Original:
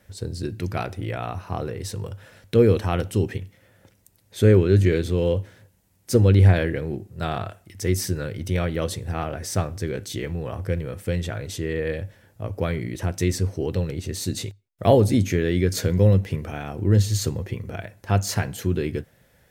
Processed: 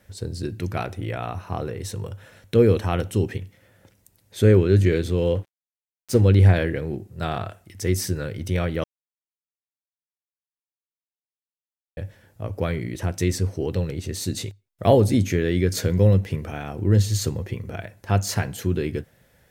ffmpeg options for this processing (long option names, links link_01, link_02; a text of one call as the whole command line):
ffmpeg -i in.wav -filter_complex "[0:a]asettb=1/sr,asplit=3[link_01][link_02][link_03];[link_01]atrim=end=0.584[link_04];[link_02]atrim=start=0.58:end=3.19,asetpts=PTS-STARTPTS,afade=type=in:duration=0.004:curve=qsin,afade=type=out:start_time=2.606:duration=0.004:curve=qsin,bandreject=frequency=4800:width=11[link_05];[link_03]atrim=start=3.186[link_06];[link_04][link_05]acrossfade=duration=0.004:curve1=hsin:curve2=qsin[link_07];[link_07][link_06]acrossfade=duration=0.004:curve1=qsin:curve2=hsin,asettb=1/sr,asplit=3[link_08][link_09][link_10];[link_08]atrim=end=5.354[link_11];[link_09]atrim=start=5.35:end=6.21,asetpts=PTS-STARTPTS,afade=type=in:duration=0.004:curve=qsin,afade=type=out:start_time=0.856:duration=0.004:curve=qsin,aeval=exprs='sgn(val(0))*max(abs(val(0))-0.0112,0)':channel_layout=same[link_12];[link_10]atrim=start=6.206[link_13];[link_11][link_12]acrossfade=duration=0.004:curve1=hsin:curve2=qsin[link_14];[link_14][link_13]acrossfade=duration=0.004:curve1=qsin:curve2=hsin,asplit=3[link_15][link_16][link_17];[link_15]atrim=end=8.84,asetpts=PTS-STARTPTS,afade=type=out:start_time=8.836:duration=0.004:curve=hsin[link_18];[link_16]atrim=start=8.84:end=11.97,asetpts=PTS-STARTPTS,volume=0[link_19];[link_17]atrim=start=11.97,asetpts=PTS-STARTPTS,afade=type=in:duration=0.004:curve=hsin[link_20];[link_18][link_19][link_20]concat=n=3:v=0:a=1" out.wav